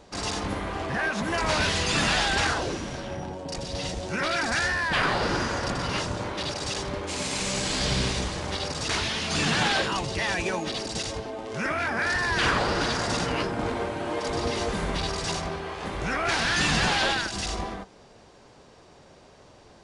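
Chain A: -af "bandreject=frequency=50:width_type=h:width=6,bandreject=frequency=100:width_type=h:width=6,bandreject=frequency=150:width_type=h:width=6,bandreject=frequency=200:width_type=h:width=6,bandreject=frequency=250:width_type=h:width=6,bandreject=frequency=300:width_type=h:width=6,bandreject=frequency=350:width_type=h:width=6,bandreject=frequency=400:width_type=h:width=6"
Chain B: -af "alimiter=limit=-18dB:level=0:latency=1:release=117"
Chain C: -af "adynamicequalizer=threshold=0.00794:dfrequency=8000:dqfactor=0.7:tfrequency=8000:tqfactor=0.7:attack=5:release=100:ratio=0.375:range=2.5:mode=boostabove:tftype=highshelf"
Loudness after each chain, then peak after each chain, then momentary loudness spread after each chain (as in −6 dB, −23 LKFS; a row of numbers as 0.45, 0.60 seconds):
−27.0, −28.5, −26.5 LKFS; −12.5, −18.0, −12.0 dBFS; 9, 6, 9 LU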